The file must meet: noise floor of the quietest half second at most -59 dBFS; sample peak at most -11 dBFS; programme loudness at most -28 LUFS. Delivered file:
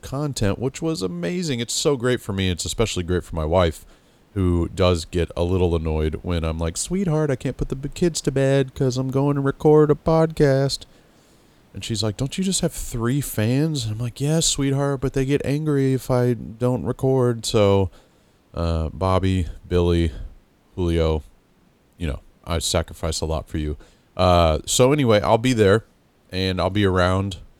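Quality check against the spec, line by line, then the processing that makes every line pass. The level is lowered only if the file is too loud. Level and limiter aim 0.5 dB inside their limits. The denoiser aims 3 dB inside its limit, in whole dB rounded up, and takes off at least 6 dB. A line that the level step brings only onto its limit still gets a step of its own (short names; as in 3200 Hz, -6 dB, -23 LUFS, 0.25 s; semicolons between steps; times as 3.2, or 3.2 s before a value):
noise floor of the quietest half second -58 dBFS: fail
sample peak -3.5 dBFS: fail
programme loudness -21.5 LUFS: fail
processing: gain -7 dB; limiter -11.5 dBFS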